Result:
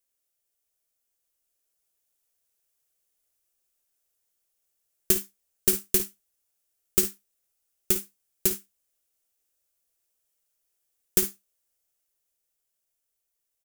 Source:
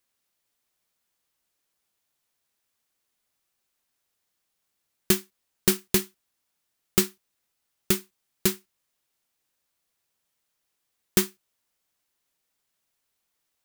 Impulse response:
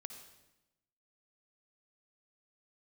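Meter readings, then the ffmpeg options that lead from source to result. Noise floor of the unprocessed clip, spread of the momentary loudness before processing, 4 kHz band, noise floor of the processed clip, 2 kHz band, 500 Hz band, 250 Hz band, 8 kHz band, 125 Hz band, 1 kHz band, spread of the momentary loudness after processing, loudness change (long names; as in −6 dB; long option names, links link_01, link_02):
−79 dBFS, 7 LU, −5.0 dB, −80 dBFS, −7.0 dB, −3.5 dB, −6.5 dB, +1.5 dB, −8.0 dB, −8.0 dB, 6 LU, +0.5 dB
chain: -filter_complex "[0:a]equalizer=frequency=125:width_type=o:width=1:gain=-12,equalizer=frequency=250:width_type=o:width=1:gain=-10,equalizer=frequency=1000:width_type=o:width=1:gain=-11,equalizer=frequency=2000:width_type=o:width=1:gain=-7,equalizer=frequency=4000:width_type=o:width=1:gain=-8,dynaudnorm=framelen=150:gausssize=21:maxgain=3.5dB,asplit=2[link_01][link_02];[link_02]aecho=0:1:54|69:0.237|0.15[link_03];[link_01][link_03]amix=inputs=2:normalize=0"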